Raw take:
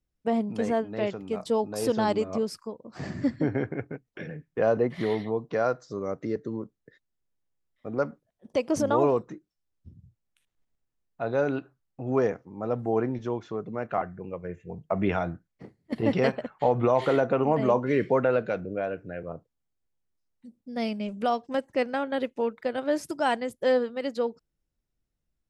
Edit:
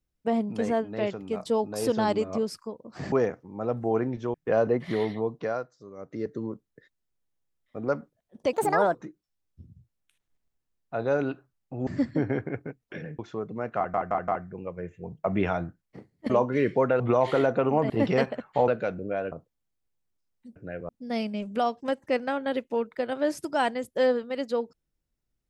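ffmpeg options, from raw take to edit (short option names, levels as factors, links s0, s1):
-filter_complex "[0:a]asplit=19[s0][s1][s2][s3][s4][s5][s6][s7][s8][s9][s10][s11][s12][s13][s14][s15][s16][s17][s18];[s0]atrim=end=3.122[s19];[s1]atrim=start=12.138:end=13.362[s20];[s2]atrim=start=4.438:end=5.8,asetpts=PTS-STARTPTS,afade=t=out:st=0.992:d=0.37:silence=0.237137[s21];[s3]atrim=start=5.8:end=6.06,asetpts=PTS-STARTPTS,volume=0.237[s22];[s4]atrim=start=6.06:end=8.634,asetpts=PTS-STARTPTS,afade=t=in:d=0.37:silence=0.237137[s23];[s5]atrim=start=8.63:end=9.22,asetpts=PTS-STARTPTS,asetrate=62181,aresample=44100,atrim=end_sample=18453,asetpts=PTS-STARTPTS[s24];[s6]atrim=start=9.216:end=12.142[s25];[s7]atrim=start=3.118:end=4.442[s26];[s8]atrim=start=13.358:end=14.112[s27];[s9]atrim=start=13.938:end=14.112[s28];[s10]atrim=start=13.938:end=14.112[s29];[s11]atrim=start=13.938:end=15.962[s30];[s12]atrim=start=17.638:end=18.342[s31];[s13]atrim=start=16.738:end=17.642[s32];[s14]atrim=start=15.958:end=16.742[s33];[s15]atrim=start=18.338:end=18.982[s34];[s16]atrim=start=19.308:end=20.552[s35];[s17]atrim=start=18.978:end=19.312[s36];[s18]atrim=start=20.548[s37];[s19][s20]acrossfade=d=0.004:c1=hsin:c2=hsin[s38];[s21][s22][s23]concat=n=3:v=0:a=1[s39];[s38][s39]acrossfade=d=0.004:c1=hsin:c2=hsin[s40];[s40][s24]acrossfade=d=0.004:c1=hsin:c2=hsin[s41];[s41][s25]acrossfade=d=0.004:c1=hsin:c2=hsin[s42];[s42][s26]acrossfade=d=0.004:c1=hsin:c2=hsin[s43];[s43][s27]acrossfade=d=0.004:c1=hsin:c2=hsin[s44];[s44][s28]acrossfade=d=0.004:c1=hsin:c2=hsin[s45];[s45][s29]acrossfade=d=0.004:c1=hsin:c2=hsin[s46];[s46][s30]acrossfade=d=0.004:c1=hsin:c2=hsin[s47];[s47][s31]acrossfade=d=0.004:c1=hsin:c2=hsin[s48];[s48][s32]acrossfade=d=0.004:c1=hsin:c2=hsin[s49];[s49][s33]acrossfade=d=0.004:c1=hsin:c2=hsin[s50];[s50][s34]acrossfade=d=0.004:c1=hsin:c2=hsin[s51];[s51][s35]acrossfade=d=0.004:c1=hsin:c2=hsin[s52];[s52][s36]acrossfade=d=0.004:c1=hsin:c2=hsin[s53];[s53][s37]acrossfade=d=0.004:c1=hsin:c2=hsin"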